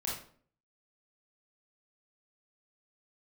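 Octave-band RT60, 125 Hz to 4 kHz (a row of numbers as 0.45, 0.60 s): 0.65, 0.65, 0.55, 0.45, 0.40, 0.35 s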